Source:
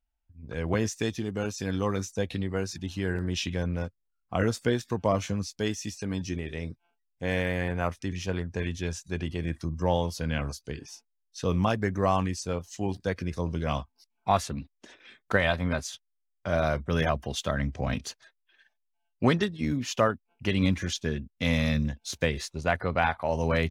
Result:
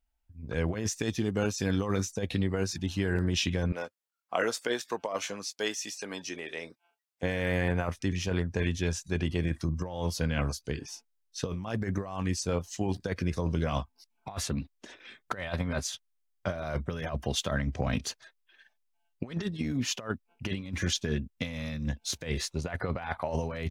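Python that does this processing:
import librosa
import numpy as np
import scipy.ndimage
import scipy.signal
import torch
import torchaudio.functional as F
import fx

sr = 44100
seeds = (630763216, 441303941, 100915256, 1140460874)

y = fx.highpass(x, sr, hz=490.0, slope=12, at=(3.72, 7.23))
y = fx.over_compress(y, sr, threshold_db=-29.0, ratio=-0.5)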